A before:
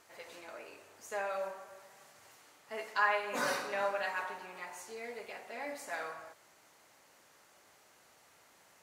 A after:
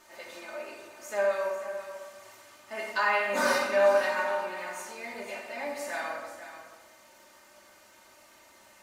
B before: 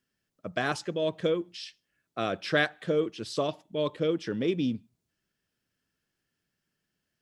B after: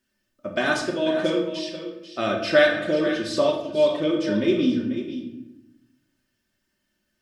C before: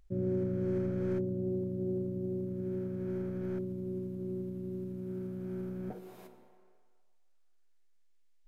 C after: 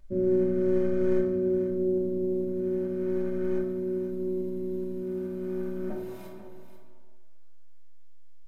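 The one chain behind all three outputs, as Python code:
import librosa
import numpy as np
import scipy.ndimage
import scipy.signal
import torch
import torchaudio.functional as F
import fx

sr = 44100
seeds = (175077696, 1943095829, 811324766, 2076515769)

y = x + 0.67 * np.pad(x, (int(3.3 * sr / 1000.0), 0))[:len(x)]
y = y + 10.0 ** (-11.5 / 20.0) * np.pad(y, (int(490 * sr / 1000.0), 0))[:len(y)]
y = fx.room_shoebox(y, sr, seeds[0], volume_m3=290.0, walls='mixed', distance_m=1.1)
y = F.gain(torch.from_numpy(y), 2.5).numpy()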